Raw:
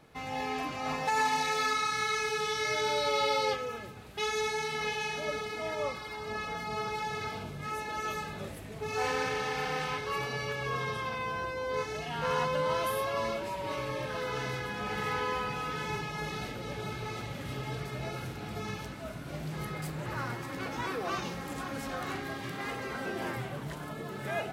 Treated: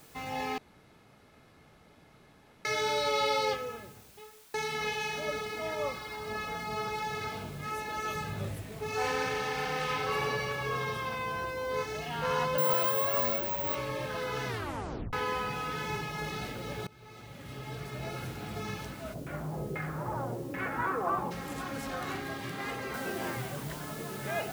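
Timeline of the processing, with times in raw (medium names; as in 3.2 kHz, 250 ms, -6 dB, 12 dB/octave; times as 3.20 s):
0.58–2.65 s: room tone
3.42–4.54 s: studio fade out
8.15–8.62 s: peaking EQ 110 Hz +12 dB
9.75–10.22 s: reverb throw, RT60 2.4 s, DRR 0 dB
12.58–13.75 s: careless resampling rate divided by 2×, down filtered, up zero stuff
14.47 s: tape stop 0.66 s
16.87–18.22 s: fade in, from -22 dB
19.13–21.30 s: LFO low-pass saw down 2.7 Hz -> 0.53 Hz 400–2200 Hz
22.94 s: noise floor step -58 dB -48 dB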